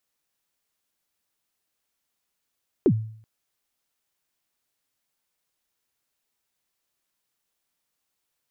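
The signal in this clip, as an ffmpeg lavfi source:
ffmpeg -f lavfi -i "aevalsrc='0.251*pow(10,-3*t/0.57)*sin(2*PI*(440*0.066/log(110/440)*(exp(log(110/440)*min(t,0.066)/0.066)-1)+110*max(t-0.066,0)))':duration=0.38:sample_rate=44100" out.wav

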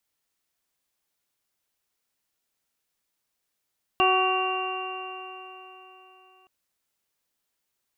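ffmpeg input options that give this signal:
ffmpeg -f lavfi -i "aevalsrc='0.0631*pow(10,-3*t/3.75)*sin(2*PI*372.52*t)+0.0794*pow(10,-3*t/3.75)*sin(2*PI*748.15*t)+0.0794*pow(10,-3*t/3.75)*sin(2*PI*1129.97*t)+0.0141*pow(10,-3*t/3.75)*sin(2*PI*1520.97*t)+0.00708*pow(10,-3*t/3.75)*sin(2*PI*1924*t)+0.00944*pow(10,-3*t/3.75)*sin(2*PI*2341.79*t)+0.0794*pow(10,-3*t/3.75)*sin(2*PI*2776.89*t)':duration=2.47:sample_rate=44100" out.wav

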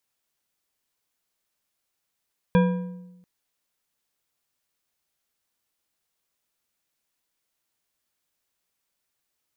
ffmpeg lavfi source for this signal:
ffmpeg -f lavfi -i "aevalsrc='0.2*pow(10,-3*t/1.06)*sin(2*PI*180*t)+0.112*pow(10,-3*t/0.782)*sin(2*PI*496.3*t)+0.0631*pow(10,-3*t/0.639)*sin(2*PI*972.7*t)+0.0355*pow(10,-3*t/0.55)*sin(2*PI*1607.9*t)+0.02*pow(10,-3*t/0.487)*sin(2*PI*2401.2*t)+0.0112*pow(10,-3*t/0.441)*sin(2*PI*3355.2*t)':duration=0.69:sample_rate=44100" out.wav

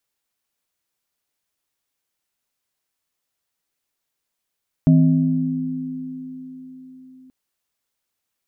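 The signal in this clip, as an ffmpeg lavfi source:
ffmpeg -f lavfi -i "aevalsrc='0.316*pow(10,-3*t/2.44)*sin(2*PI*161*t)+0.224*pow(10,-3*t/4.68)*sin(2*PI*258*t)+0.0398*pow(10,-3*t/1.04)*sin(2*PI*631*t)':duration=2.43:sample_rate=44100" out.wav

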